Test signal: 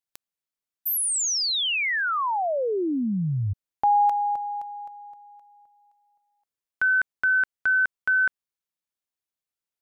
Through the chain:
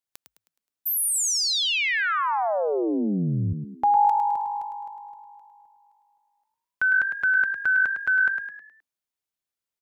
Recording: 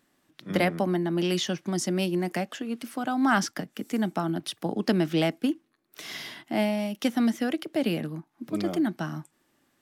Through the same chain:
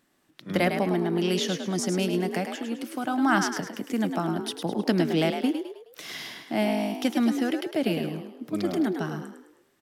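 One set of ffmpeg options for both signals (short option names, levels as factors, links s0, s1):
-filter_complex "[0:a]asplit=6[s0][s1][s2][s3][s4][s5];[s1]adelay=105,afreqshift=49,volume=0.447[s6];[s2]adelay=210,afreqshift=98,volume=0.188[s7];[s3]adelay=315,afreqshift=147,volume=0.0785[s8];[s4]adelay=420,afreqshift=196,volume=0.0331[s9];[s5]adelay=525,afreqshift=245,volume=0.014[s10];[s0][s6][s7][s8][s9][s10]amix=inputs=6:normalize=0"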